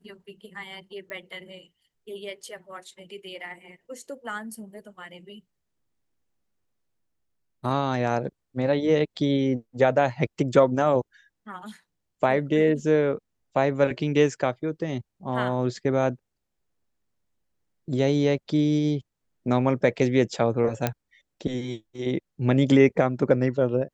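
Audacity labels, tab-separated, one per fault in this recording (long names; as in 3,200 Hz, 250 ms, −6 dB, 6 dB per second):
1.100000	1.100000	click −25 dBFS
20.870000	20.870000	click −9 dBFS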